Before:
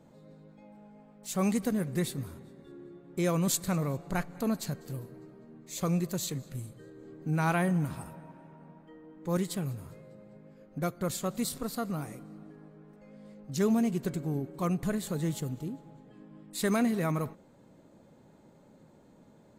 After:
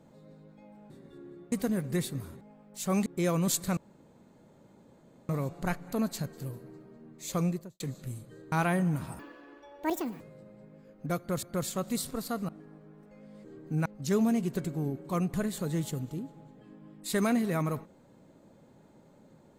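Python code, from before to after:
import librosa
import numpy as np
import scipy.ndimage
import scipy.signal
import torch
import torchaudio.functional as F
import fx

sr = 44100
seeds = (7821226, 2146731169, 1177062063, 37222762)

y = fx.studio_fade_out(x, sr, start_s=5.89, length_s=0.39)
y = fx.edit(y, sr, fx.swap(start_s=0.9, length_s=0.65, other_s=2.44, other_length_s=0.62),
    fx.insert_room_tone(at_s=3.77, length_s=1.52),
    fx.move(start_s=7.0, length_s=0.41, to_s=13.35),
    fx.speed_span(start_s=8.08, length_s=1.85, speed=1.82),
    fx.repeat(start_s=10.9, length_s=0.25, count=2),
    fx.cut(start_s=11.96, length_s=0.43), tone=tone)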